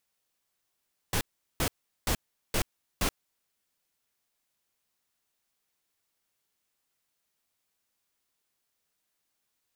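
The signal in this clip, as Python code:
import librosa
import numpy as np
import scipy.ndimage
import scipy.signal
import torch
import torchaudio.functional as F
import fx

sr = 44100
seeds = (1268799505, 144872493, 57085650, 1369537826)

y = fx.noise_burst(sr, seeds[0], colour='pink', on_s=0.08, off_s=0.39, bursts=5, level_db=-27.0)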